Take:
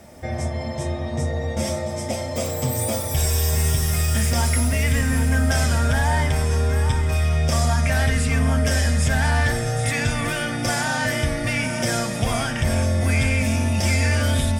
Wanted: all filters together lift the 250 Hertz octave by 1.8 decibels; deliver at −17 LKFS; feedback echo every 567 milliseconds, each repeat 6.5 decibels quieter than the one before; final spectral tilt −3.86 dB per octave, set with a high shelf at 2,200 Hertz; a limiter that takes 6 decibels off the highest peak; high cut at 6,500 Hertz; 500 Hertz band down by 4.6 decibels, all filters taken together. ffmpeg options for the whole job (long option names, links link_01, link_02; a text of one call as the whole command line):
ffmpeg -i in.wav -af "lowpass=6500,equalizer=frequency=250:width_type=o:gain=3.5,equalizer=frequency=500:width_type=o:gain=-7.5,highshelf=frequency=2200:gain=8,alimiter=limit=-12.5dB:level=0:latency=1,aecho=1:1:567|1134|1701|2268|2835|3402:0.473|0.222|0.105|0.0491|0.0231|0.0109,volume=4.5dB" out.wav